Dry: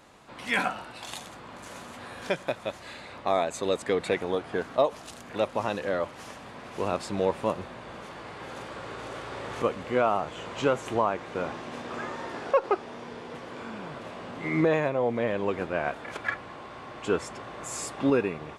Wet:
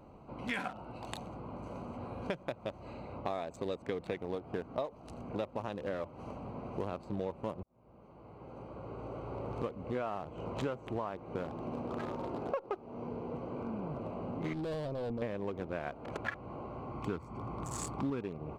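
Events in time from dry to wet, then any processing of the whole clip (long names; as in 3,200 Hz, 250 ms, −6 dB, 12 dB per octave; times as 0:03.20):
0:07.63–0:10.06: fade in
0:14.53–0:15.22: tube saturation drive 31 dB, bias 0.5
0:16.91–0:18.22: comb filter 0.9 ms, depth 49%
whole clip: adaptive Wiener filter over 25 samples; low-shelf EQ 160 Hz +7 dB; downward compressor 5 to 1, threshold −36 dBFS; level +1.5 dB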